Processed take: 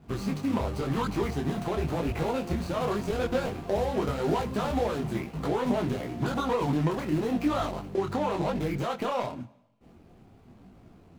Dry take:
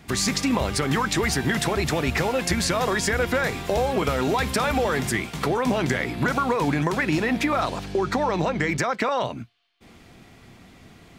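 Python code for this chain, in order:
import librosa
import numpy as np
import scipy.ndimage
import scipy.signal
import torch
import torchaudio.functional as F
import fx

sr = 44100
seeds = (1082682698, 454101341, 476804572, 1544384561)

y = scipy.ndimage.median_filter(x, 25, mode='constant')
y = fx.rev_schroeder(y, sr, rt60_s=0.91, comb_ms=33, drr_db=19.0)
y = fx.detune_double(y, sr, cents=32)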